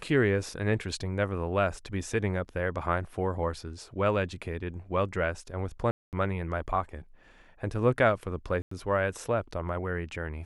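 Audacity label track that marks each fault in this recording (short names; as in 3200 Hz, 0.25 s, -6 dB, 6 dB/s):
5.910000	6.130000	gap 0.218 s
8.620000	8.710000	gap 94 ms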